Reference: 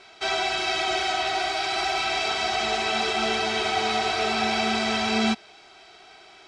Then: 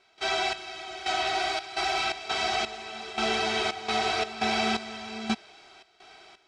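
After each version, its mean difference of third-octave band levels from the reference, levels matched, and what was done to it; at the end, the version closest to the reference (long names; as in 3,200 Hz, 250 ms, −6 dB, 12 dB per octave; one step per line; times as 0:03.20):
4.5 dB: gate pattern ".xx...xxx.xx" 85 BPM −12 dB
level −2 dB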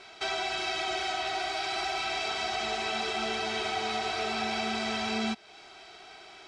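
1.5 dB: downward compressor 2 to 1, threshold −34 dBFS, peak gain reduction 8.5 dB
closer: second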